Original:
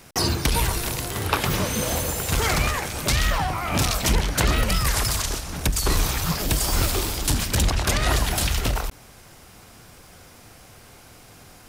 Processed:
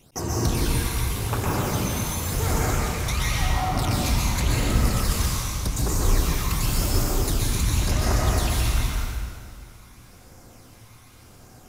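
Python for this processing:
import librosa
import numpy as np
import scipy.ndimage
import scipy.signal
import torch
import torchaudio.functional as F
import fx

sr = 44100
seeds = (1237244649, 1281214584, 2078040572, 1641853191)

y = fx.phaser_stages(x, sr, stages=12, low_hz=480.0, high_hz=4200.0, hz=0.9, feedback_pct=40)
y = fx.rev_plate(y, sr, seeds[0], rt60_s=2.0, hf_ratio=0.85, predelay_ms=110, drr_db=-5.0)
y = y * librosa.db_to_amplitude(-6.5)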